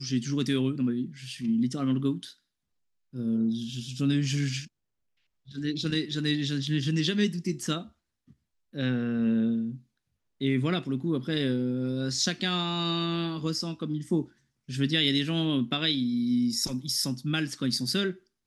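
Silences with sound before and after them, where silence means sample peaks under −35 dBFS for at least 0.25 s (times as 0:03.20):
0:02.28–0:03.15
0:04.64–0:05.55
0:07.82–0:08.75
0:09.75–0:10.41
0:14.24–0:14.69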